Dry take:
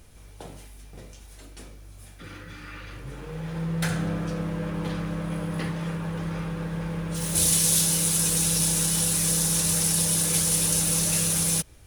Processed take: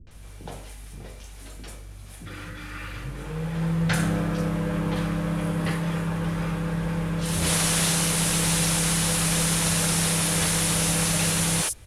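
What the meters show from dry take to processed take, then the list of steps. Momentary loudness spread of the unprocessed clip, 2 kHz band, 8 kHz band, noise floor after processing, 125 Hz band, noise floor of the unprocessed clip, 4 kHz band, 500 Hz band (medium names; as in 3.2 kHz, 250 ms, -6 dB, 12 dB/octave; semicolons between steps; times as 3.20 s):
18 LU, +7.0 dB, -2.5 dB, -42 dBFS, +3.5 dB, -47 dBFS, +2.5 dB, +3.5 dB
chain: CVSD coder 64 kbps; three bands offset in time lows, mids, highs 70/110 ms, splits 340/5700 Hz; trim +4.5 dB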